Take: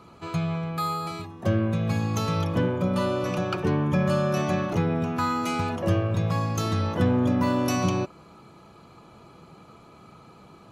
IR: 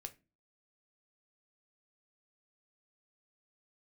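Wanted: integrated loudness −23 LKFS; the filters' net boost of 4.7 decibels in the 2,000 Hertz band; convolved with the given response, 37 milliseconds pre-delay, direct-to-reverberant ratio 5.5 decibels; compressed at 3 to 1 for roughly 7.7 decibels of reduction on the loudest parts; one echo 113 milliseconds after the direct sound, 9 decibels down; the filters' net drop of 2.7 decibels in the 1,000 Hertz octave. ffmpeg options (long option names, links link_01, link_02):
-filter_complex "[0:a]equalizer=frequency=1000:width_type=o:gain=-6.5,equalizer=frequency=2000:width_type=o:gain=8.5,acompressor=threshold=-29dB:ratio=3,aecho=1:1:113:0.355,asplit=2[link_01][link_02];[1:a]atrim=start_sample=2205,adelay=37[link_03];[link_02][link_03]afir=irnorm=-1:irlink=0,volume=-0.5dB[link_04];[link_01][link_04]amix=inputs=2:normalize=0,volume=6.5dB"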